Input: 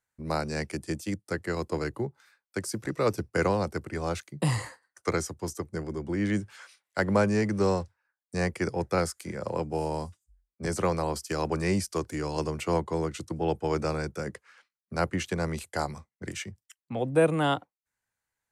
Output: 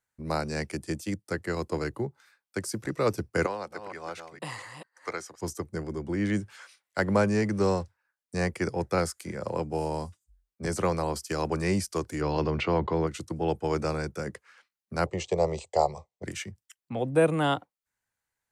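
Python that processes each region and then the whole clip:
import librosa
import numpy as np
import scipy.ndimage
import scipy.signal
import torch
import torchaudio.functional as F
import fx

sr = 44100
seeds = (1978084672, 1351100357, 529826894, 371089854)

y = fx.chain(x, sr, fx.reverse_delay(ms=233, wet_db=-8.0),
    fx.highpass(hz=1100.0, slope=6),
    fx.high_shelf(hz=4400.0, db=-11.5), at=(3.46, 5.41))
y = fx.chain(y, sr, fx.lowpass(hz=4300.0, slope=24),
    fx.env_flatten(amount_pct=50), at=(12.21, 13.07))
y = fx.chain(y, sr, fx.ellip_lowpass(hz=7900.0, order=4, stop_db=40),
    fx.peak_eq(hz=550.0, db=11.0, octaves=2.6),
    fx.fixed_phaser(hz=630.0, stages=4), at=(15.06, 16.24))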